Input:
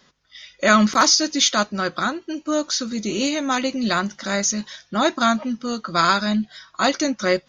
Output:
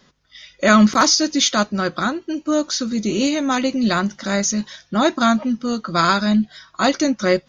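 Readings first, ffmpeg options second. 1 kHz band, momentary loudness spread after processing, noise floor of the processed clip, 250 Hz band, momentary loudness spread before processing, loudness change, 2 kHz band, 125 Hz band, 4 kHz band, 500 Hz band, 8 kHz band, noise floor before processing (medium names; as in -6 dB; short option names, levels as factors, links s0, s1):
+1.0 dB, 9 LU, -57 dBFS, +4.5 dB, 10 LU, +2.0 dB, +0.5 dB, +5.0 dB, 0.0 dB, +2.5 dB, 0.0 dB, -59 dBFS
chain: -af "lowshelf=f=450:g=6"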